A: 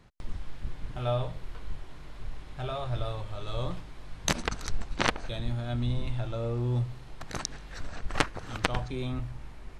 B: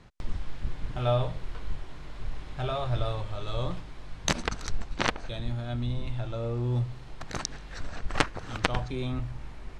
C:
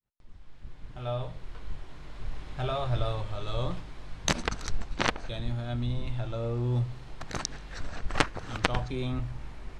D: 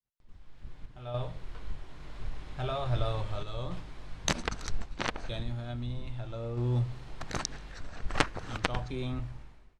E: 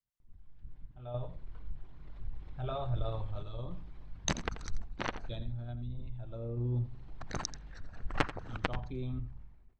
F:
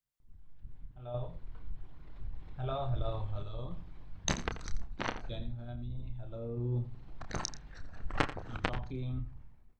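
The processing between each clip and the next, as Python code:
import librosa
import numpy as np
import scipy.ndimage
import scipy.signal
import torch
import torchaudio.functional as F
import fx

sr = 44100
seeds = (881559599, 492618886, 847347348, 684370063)

y1 = fx.rider(x, sr, range_db=5, speed_s=2.0)
y1 = scipy.signal.sosfilt(scipy.signal.butter(2, 8800.0, 'lowpass', fs=sr, output='sos'), y1)
y2 = fx.fade_in_head(y1, sr, length_s=2.63)
y3 = fx.fade_out_tail(y2, sr, length_s=0.56)
y3 = fx.tremolo_random(y3, sr, seeds[0], hz=3.5, depth_pct=55)
y4 = fx.envelope_sharpen(y3, sr, power=1.5)
y4 = y4 + 10.0 ** (-14.0 / 20.0) * np.pad(y4, (int(86 * sr / 1000.0), 0))[:len(y4)]
y4 = y4 * 10.0 ** (-3.0 / 20.0)
y5 = fx.doubler(y4, sr, ms=30.0, db=-8.5)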